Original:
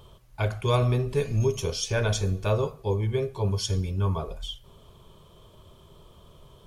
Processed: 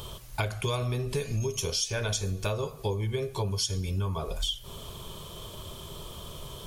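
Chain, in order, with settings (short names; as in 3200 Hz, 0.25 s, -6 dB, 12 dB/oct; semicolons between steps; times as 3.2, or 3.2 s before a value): high shelf 2900 Hz +11 dB; compressor 10:1, threshold -36 dBFS, peak gain reduction 19 dB; gain +9 dB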